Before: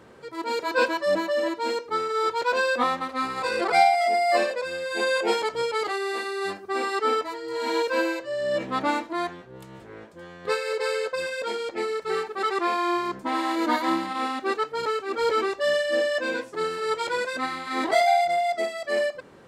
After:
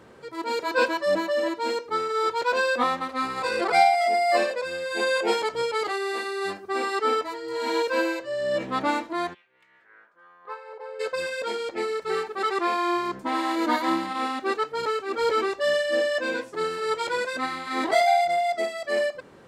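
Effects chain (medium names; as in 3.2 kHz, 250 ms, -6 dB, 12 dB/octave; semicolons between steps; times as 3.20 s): 9.33–10.99 s: band-pass filter 2.7 kHz -> 670 Hz, Q 4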